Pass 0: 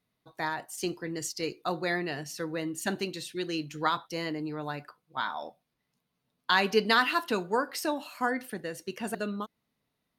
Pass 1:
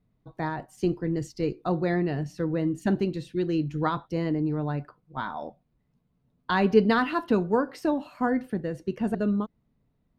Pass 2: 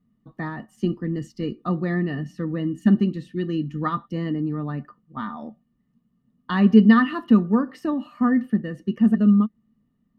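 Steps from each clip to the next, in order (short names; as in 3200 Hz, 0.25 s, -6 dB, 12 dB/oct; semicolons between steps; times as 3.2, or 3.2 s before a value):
tilt -4.5 dB/oct
small resonant body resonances 220/1200/1800/2900 Hz, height 18 dB, ringing for 55 ms; gain -5.5 dB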